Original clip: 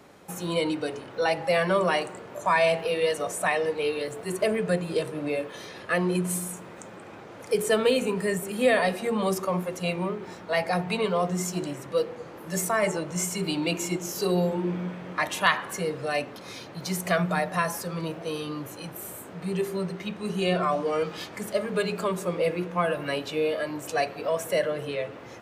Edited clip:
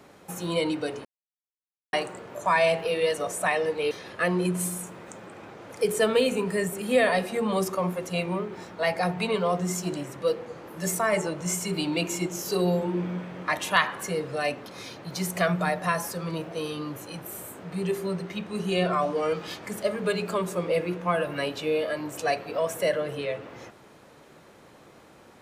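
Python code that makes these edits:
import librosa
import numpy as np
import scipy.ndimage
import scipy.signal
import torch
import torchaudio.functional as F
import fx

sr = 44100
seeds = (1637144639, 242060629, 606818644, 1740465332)

y = fx.edit(x, sr, fx.silence(start_s=1.05, length_s=0.88),
    fx.cut(start_s=3.91, length_s=1.7), tone=tone)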